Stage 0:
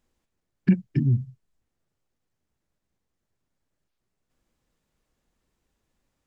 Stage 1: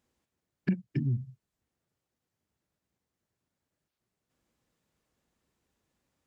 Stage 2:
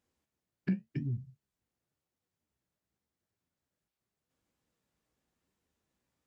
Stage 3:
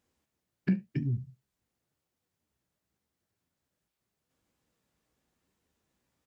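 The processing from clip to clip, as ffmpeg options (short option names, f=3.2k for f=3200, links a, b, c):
-af "highpass=70,acompressor=threshold=-29dB:ratio=2,volume=-1.5dB"
-af "flanger=delay=9.7:depth=8.3:regen=56:speed=0.9:shape=triangular"
-af "aecho=1:1:71:0.0668,volume=4dB"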